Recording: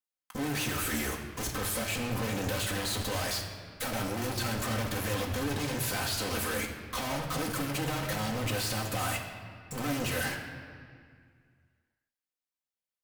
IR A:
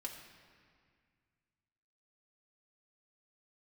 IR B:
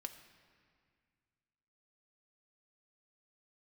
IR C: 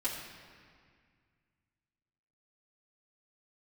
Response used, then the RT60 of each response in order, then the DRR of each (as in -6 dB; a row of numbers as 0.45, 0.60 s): A; 2.0, 2.0, 2.0 s; -1.0, 5.5, -8.5 dB